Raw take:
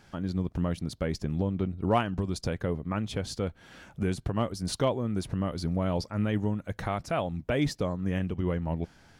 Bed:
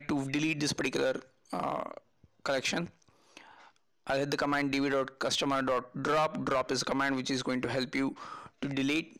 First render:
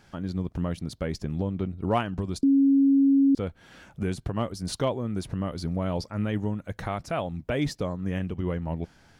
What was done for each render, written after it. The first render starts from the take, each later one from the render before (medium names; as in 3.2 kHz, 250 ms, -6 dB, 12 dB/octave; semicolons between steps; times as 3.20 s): 2.43–3.35 s: bleep 275 Hz -16 dBFS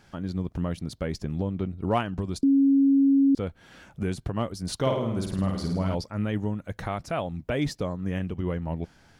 4.76–5.95 s: flutter echo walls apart 9 m, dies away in 0.75 s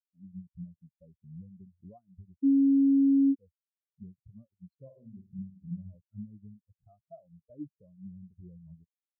compression 10:1, threshold -26 dBFS, peak gain reduction 8.5 dB; spectral contrast expander 4:1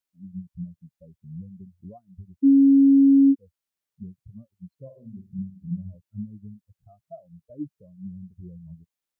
trim +7.5 dB